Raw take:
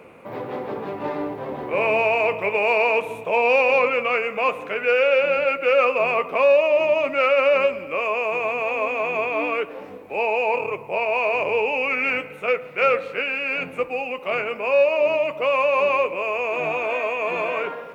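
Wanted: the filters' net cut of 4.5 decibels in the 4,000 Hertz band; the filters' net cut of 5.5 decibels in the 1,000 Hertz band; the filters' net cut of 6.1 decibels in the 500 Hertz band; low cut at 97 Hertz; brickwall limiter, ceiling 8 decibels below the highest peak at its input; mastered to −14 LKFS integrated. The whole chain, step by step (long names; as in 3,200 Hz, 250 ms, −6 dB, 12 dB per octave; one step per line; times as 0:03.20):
high-pass filter 97 Hz
parametric band 500 Hz −5.5 dB
parametric band 1,000 Hz −5 dB
parametric band 4,000 Hz −7.5 dB
level +14.5 dB
brickwall limiter −5.5 dBFS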